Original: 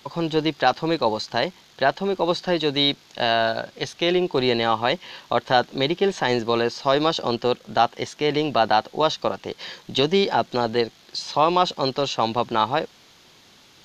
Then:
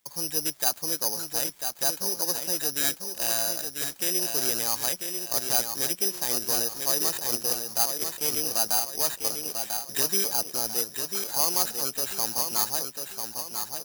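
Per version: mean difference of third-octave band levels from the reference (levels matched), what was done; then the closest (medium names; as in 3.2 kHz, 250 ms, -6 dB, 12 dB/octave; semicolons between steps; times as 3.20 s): 14.5 dB: gate -45 dBFS, range -14 dB; feedback delay 994 ms, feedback 43%, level -6 dB; careless resampling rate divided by 8×, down none, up zero stuff; trim -15.5 dB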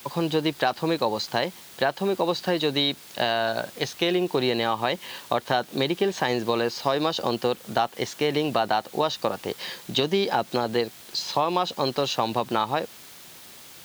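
5.5 dB: word length cut 8-bit, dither triangular; compression, threshold -20 dBFS, peak gain reduction 8 dB; high-pass 65 Hz; trim +1 dB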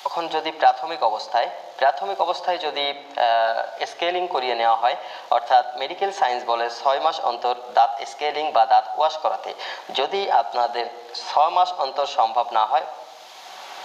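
8.5 dB: resonant high-pass 740 Hz, resonance Q 4.1; simulated room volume 3900 m³, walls furnished, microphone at 1.1 m; three bands compressed up and down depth 70%; trim -5.5 dB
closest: second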